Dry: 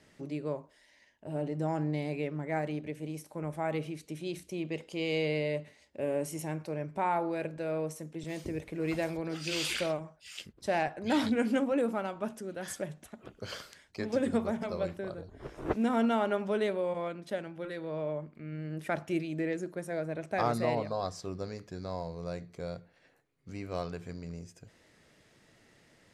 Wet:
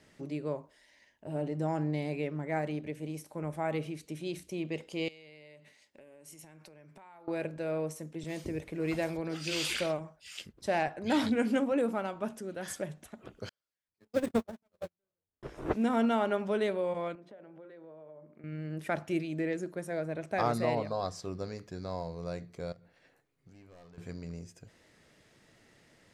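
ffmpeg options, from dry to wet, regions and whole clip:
-filter_complex "[0:a]asettb=1/sr,asplit=3[a][b][c];[a]atrim=end=5.084[d];[b]atrim=start=5.08:end=7.28,asetpts=PTS-STARTPTS,afade=t=in:d=0.004:c=qsin,afade=t=out:st=2.196:d=0.004:c=qsin,highpass=180,acompressor=threshold=-44dB:ratio=20:attack=3.2:release=140:knee=1:detection=peak,equalizer=f=420:w=0.44:g=-7.5[e];[c]atrim=start=7.276[f];[d][e]acrossfade=d=0.004:c1=hsin:c2=qsin[g];[g][f]acrossfade=d=0.004:c1=qsin:c2=hsin,asettb=1/sr,asplit=3[h][i][j];[h]atrim=end=13.494[k];[i]atrim=start=13.49:end=15.43,asetpts=PTS-STARTPTS,afade=t=in:d=0.004:c=qsin,afade=t=out:st=1.936:d=0.004:c=qsin,aeval=exprs='val(0)+0.5*0.02*sgn(val(0))':c=same,agate=range=-58dB:threshold=-27dB:ratio=16:release=100:detection=peak[l];[j]atrim=start=15.426[m];[k][l]acrossfade=d=0.004:c1=hsin:c2=qsin[n];[n][m]acrossfade=d=0.004:c1=qsin:c2=hsin,asettb=1/sr,asplit=3[o][p][q];[o]atrim=end=17.154[r];[p]atrim=start=17.15:end=18.44,asetpts=PTS-STARTPTS,afade=t=in:d=0.004:c=qsin,afade=t=out:st=1.286:d=0.004:c=qsin,bandreject=f=60:t=h:w=6,bandreject=f=120:t=h:w=6,bandreject=f=180:t=h:w=6,bandreject=f=240:t=h:w=6,bandreject=f=300:t=h:w=6,bandreject=f=360:t=h:w=6,bandreject=f=420:t=h:w=6,bandreject=f=480:t=h:w=6,bandreject=f=540:t=h:w=6,bandreject=f=600:t=h:w=6,acompressor=threshold=-45dB:ratio=16:attack=3.2:release=140:knee=1:detection=peak,bandpass=f=530:t=q:w=0.62[s];[q]atrim=start=18.436[t];[r][s]acrossfade=d=0.004:c1=hsin:c2=qsin[u];[u][t]acrossfade=d=0.004:c1=qsin:c2=hsin,asettb=1/sr,asplit=3[v][w][x];[v]atrim=end=22.724[y];[w]atrim=start=22.72:end=23.98,asetpts=PTS-STARTPTS,afade=t=in:d=0.004:c=qsin,afade=t=out:st=1.256:d=0.004:c=qsin,asoftclip=type=hard:threshold=-36dB,acompressor=threshold=-52dB:ratio=16:attack=3.2:release=140:knee=1:detection=peak[z];[x]atrim=start=23.976[aa];[y][z]acrossfade=d=0.004:c1=hsin:c2=qsin[ab];[ab][aa]acrossfade=d=0.004:c1=qsin:c2=hsin"

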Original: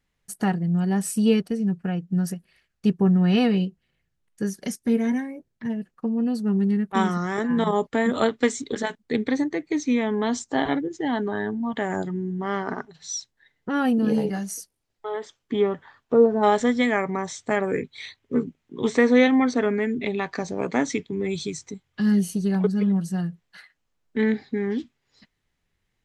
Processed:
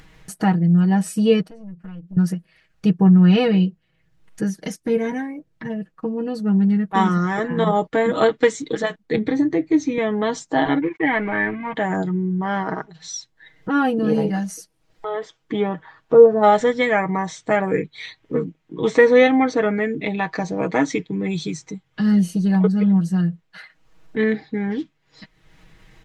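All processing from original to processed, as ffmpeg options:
-filter_complex "[0:a]asettb=1/sr,asplit=3[a][b][c];[a]atrim=end=1.474[d];[b]atrim=start=1.47:end=2.17,asetpts=PTS-STARTPTS,afade=t=in:d=0.004:c=qsin,afade=t=out:st=0.696:d=0.004:c=qsin,acompressor=threshold=-44dB:ratio=2.5:attack=3.2:release=140:knee=1:detection=peak,aeval=exprs='(tanh(70.8*val(0)+0.45)-tanh(0.45))/70.8':c=same[e];[c]atrim=start=2.166[f];[d][e]acrossfade=d=0.004:c1=hsin:c2=qsin[g];[g][f]acrossfade=d=0.004:c1=qsin:c2=hsin,asettb=1/sr,asplit=3[h][i][j];[h]atrim=end=9.154[k];[i]atrim=start=9.15:end=9.98,asetpts=PTS-STARTPTS,afade=t=in:d=0.004:c=qsin,afade=t=out:st=0.826:d=0.004:c=qsin,equalizer=f=79:w=0.34:g=11.5,acompressor=threshold=-23dB:ratio=2:attack=3.2:release=140:knee=1:detection=peak,asplit=2[l][m];[m]adelay=22,volume=-12dB[n];[l][n]amix=inputs=2:normalize=0,atrim=end_sample=36603[o];[j]atrim=start=9.976[p];[k][o]acrossfade=d=0.004:c1=hsin:c2=qsin[q];[q][p]acrossfade=d=0.004:c1=qsin:c2=hsin,asettb=1/sr,asplit=3[r][s][t];[r]atrim=end=10.824[u];[s]atrim=start=10.82:end=11.74,asetpts=PTS-STARTPTS,afade=t=in:d=0.004:c=qsin,afade=t=out:st=0.916:d=0.004:c=qsin,aeval=exprs='sgn(val(0))*max(abs(val(0))-0.0075,0)':c=same,lowpass=f=2.2k:t=q:w=9.4[v];[t]atrim=start=11.736[w];[u][v]acrossfade=d=0.004:c1=hsin:c2=qsin[x];[x][w]acrossfade=d=0.004:c1=qsin:c2=hsin,lowpass=f=3.4k:p=1,aecho=1:1:6.3:0.69,acompressor=mode=upward:threshold=-34dB:ratio=2.5,volume=3.5dB"

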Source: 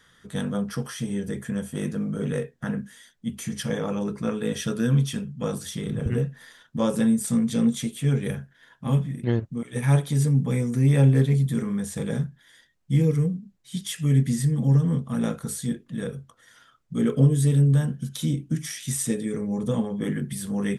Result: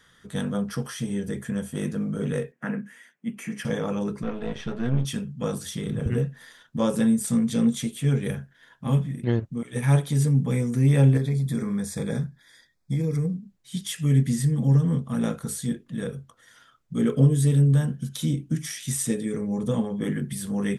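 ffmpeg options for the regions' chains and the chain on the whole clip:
-filter_complex "[0:a]asettb=1/sr,asplit=3[a][b][c];[a]atrim=end=2.524[d];[b]atrim=start=2.52:end=3.65,asetpts=PTS-STARTPTS,afade=t=in:d=0.004:c=qsin,afade=t=out:st=1.126:d=0.004:c=qsin,highpass=f=170:w=0.5412,highpass=f=170:w=1.3066,highshelf=f=3k:t=q:w=3:g=-6.5[e];[c]atrim=start=3.646[f];[d][e]acrossfade=d=0.004:c1=hsin:c2=qsin[g];[g][f]acrossfade=d=0.004:c1=qsin:c2=hsin,asettb=1/sr,asplit=3[h][i][j];[h]atrim=end=4.234[k];[i]atrim=start=4.23:end=5.05,asetpts=PTS-STARTPTS,afade=t=in:d=0.004:c=qsin,afade=t=out:st=0.816:d=0.004:c=qsin,aeval=exprs='if(lt(val(0),0),0.251*val(0),val(0))':c=same,lowpass=3.3k[l];[j]atrim=start=5.046[m];[k][l]acrossfade=d=0.004:c1=hsin:c2=qsin[n];[n][m]acrossfade=d=0.004:c1=qsin:c2=hsin,asettb=1/sr,asplit=3[o][p][q];[o]atrim=end=11.174[r];[p]atrim=start=11.17:end=13.34,asetpts=PTS-STARTPTS,afade=t=in:d=0.004:c=qsin,afade=t=out:st=2.166:d=0.004:c=qsin,equalizer=f=4.9k:t=o:w=0.27:g=5.5,acompressor=threshold=-21dB:ratio=6:attack=3.2:release=140:knee=1:detection=peak,asuperstop=centerf=2900:order=12:qfactor=4.3[s];[q]atrim=start=13.336[t];[r][s]acrossfade=d=0.004:c1=hsin:c2=qsin[u];[u][t]acrossfade=d=0.004:c1=qsin:c2=hsin"

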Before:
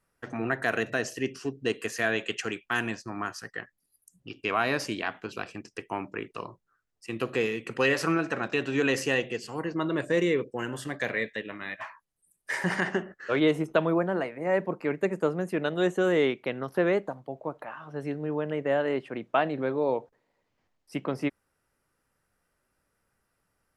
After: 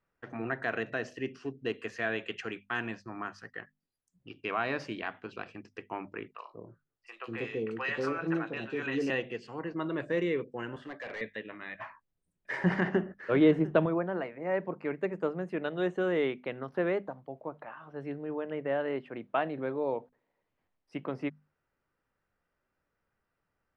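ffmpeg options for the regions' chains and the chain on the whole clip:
-filter_complex "[0:a]asettb=1/sr,asplit=3[a][b][c];[a]atrim=end=6.334[d];[b]atrim=start=6.33:end=9.1,asetpts=PTS-STARTPTS,afade=t=in:d=0.004:c=qsin,afade=t=out:st=2.766:d=0.004:c=qsin,asplit=2[e][f];[f]adelay=18,volume=-12dB[g];[e][g]amix=inputs=2:normalize=0,atrim=end_sample=122157,acrossover=split=630|3000[h][i][j];[j]adelay=40[k];[h]adelay=190[l];[l][i][k]amix=inputs=3:normalize=0,atrim=end_sample=122157[m];[c]atrim=start=9.096[n];[d][m]acrossfade=d=0.004:c1=hsin:c2=qsin[o];[o][n]acrossfade=d=0.004:c1=qsin:c2=hsin,asettb=1/sr,asplit=3[p][q][r];[p]atrim=end=10.764[s];[q]atrim=start=10.76:end=11.21,asetpts=PTS-STARTPTS,afade=t=in:d=0.004:c=qsin,afade=t=out:st=0.446:d=0.004:c=qsin,acrossover=split=3300[t][u];[u]acompressor=threshold=-51dB:ratio=4:attack=1:release=60[v];[t][v]amix=inputs=2:normalize=0,highpass=250,asoftclip=type=hard:threshold=-31dB[w];[r]atrim=start=11.206[x];[s][w]acrossfade=d=0.004:c1=hsin:c2=qsin[y];[y][x]acrossfade=d=0.004:c1=qsin:c2=hsin,asettb=1/sr,asplit=3[z][aa][ab];[z]atrim=end=11.754[ac];[aa]atrim=start=11.75:end=13.86,asetpts=PTS-STARTPTS,afade=t=in:d=0.004:c=qsin,afade=t=out:st=2.106:d=0.004:c=qsin,lowshelf=f=470:g=10,aecho=1:1:700:0.119,atrim=end_sample=93051[ad];[ab]atrim=start=13.856[ae];[ac][ad]acrossfade=d=0.004:c1=hsin:c2=qsin[af];[af][ae]acrossfade=d=0.004:c1=qsin:c2=hsin,lowpass=3.3k,bandreject=f=50:t=h:w=6,bandreject=f=100:t=h:w=6,bandreject=f=150:t=h:w=6,bandreject=f=200:t=h:w=6,bandreject=f=250:t=h:w=6,volume=-5dB"

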